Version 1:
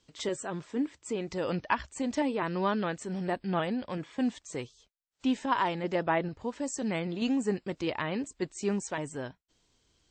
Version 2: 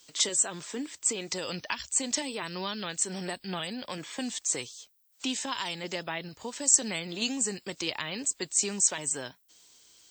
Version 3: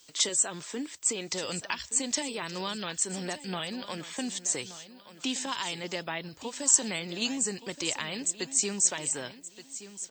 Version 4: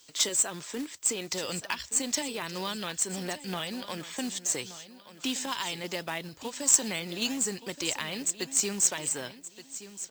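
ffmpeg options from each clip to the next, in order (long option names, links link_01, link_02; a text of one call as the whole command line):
ffmpeg -i in.wav -filter_complex "[0:a]aemphasis=mode=production:type=riaa,acrossover=split=180|3000[link_01][link_02][link_03];[link_02]acompressor=threshold=-41dB:ratio=6[link_04];[link_01][link_04][link_03]amix=inputs=3:normalize=0,volume=6dB" out.wav
ffmpeg -i in.wav -af "aecho=1:1:1174|2348|3522:0.188|0.0527|0.0148" out.wav
ffmpeg -i in.wav -af "acrusher=bits=3:mode=log:mix=0:aa=0.000001" out.wav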